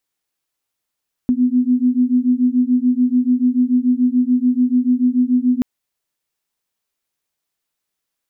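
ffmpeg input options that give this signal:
ffmpeg -f lavfi -i "aevalsrc='0.168*(sin(2*PI*246*t)+sin(2*PI*252.9*t))':duration=4.33:sample_rate=44100" out.wav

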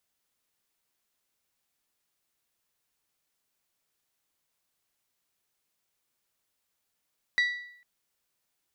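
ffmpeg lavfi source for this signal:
ffmpeg -f lavfi -i "aevalsrc='0.106*pow(10,-3*t/0.68)*sin(2*PI*1950*t)+0.0355*pow(10,-3*t/0.552)*sin(2*PI*3900*t)+0.0119*pow(10,-3*t/0.523)*sin(2*PI*4680*t)+0.00398*pow(10,-3*t/0.489)*sin(2*PI*5850*t)+0.00133*pow(10,-3*t/0.449)*sin(2*PI*7800*t)':duration=0.45:sample_rate=44100" out.wav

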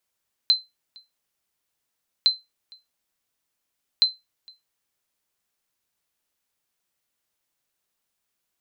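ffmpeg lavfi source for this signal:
ffmpeg -f lavfi -i "aevalsrc='0.335*(sin(2*PI*4080*mod(t,1.76))*exp(-6.91*mod(t,1.76)/0.2)+0.0376*sin(2*PI*4080*max(mod(t,1.76)-0.46,0))*exp(-6.91*max(mod(t,1.76)-0.46,0)/0.2))':duration=5.28:sample_rate=44100" out.wav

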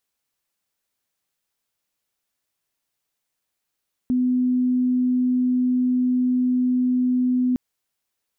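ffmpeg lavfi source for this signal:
ffmpeg -f lavfi -i "sine=frequency=251:duration=3.46:sample_rate=44100,volume=1.06dB" out.wav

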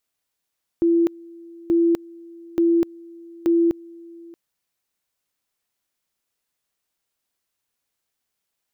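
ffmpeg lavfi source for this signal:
ffmpeg -f lavfi -i "aevalsrc='pow(10,(-14-24.5*gte(mod(t,0.88),0.25))/20)*sin(2*PI*337*t)':duration=3.52:sample_rate=44100" out.wav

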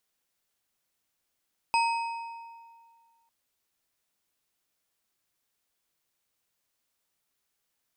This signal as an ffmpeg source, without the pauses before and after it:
ffmpeg -f lavfi -i "aevalsrc='0.0891*pow(10,-3*t/1.95)*sin(2*PI*923*t)+0.0447*pow(10,-3*t/1.438)*sin(2*PI*2544.7*t)+0.0224*pow(10,-3*t/1.175)*sin(2*PI*4987.9*t)+0.0112*pow(10,-3*t/1.011)*sin(2*PI*8245.2*t)':duration=1.55:sample_rate=44100" out.wav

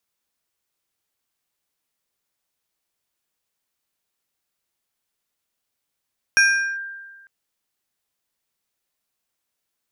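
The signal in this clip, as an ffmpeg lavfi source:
ffmpeg -f lavfi -i "aevalsrc='0.316*pow(10,-3*t/1.45)*sin(2*PI*1590*t+0.87*clip(1-t/0.41,0,1)*sin(2*PI*2.53*1590*t))':duration=0.9:sample_rate=44100" out.wav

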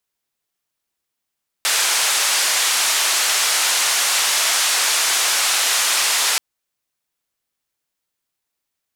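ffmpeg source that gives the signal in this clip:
ffmpeg -f lavfi -i "anoisesrc=color=white:duration=4.73:sample_rate=44100:seed=1,highpass=frequency=800,lowpass=frequency=8800,volume=-8.9dB" out.wav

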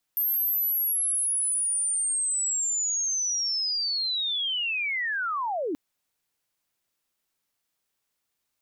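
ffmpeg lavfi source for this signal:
ffmpeg -f lavfi -i "aevalsrc='pow(10,(-22.5-3.5*t/5.58)/20)*sin(2*PI*(13000*t-12730*t*t/(2*5.58)))':duration=5.58:sample_rate=44100" out.wav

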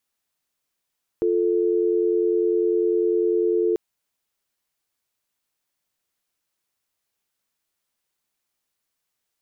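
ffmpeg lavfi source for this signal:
ffmpeg -f lavfi -i "aevalsrc='0.0944*(sin(2*PI*350*t)+sin(2*PI*440*t))':duration=2.54:sample_rate=44100" out.wav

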